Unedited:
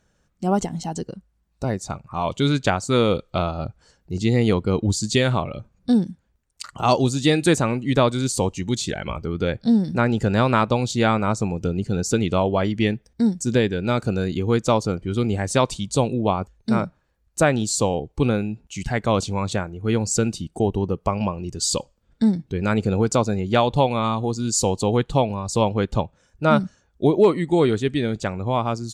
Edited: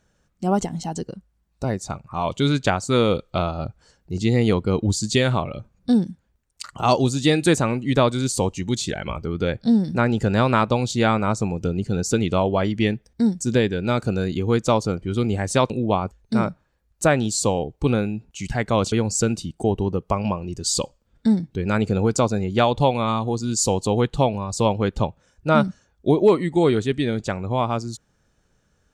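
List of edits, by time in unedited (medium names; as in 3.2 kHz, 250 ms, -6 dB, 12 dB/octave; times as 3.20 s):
15.70–16.06 s: delete
19.28–19.88 s: delete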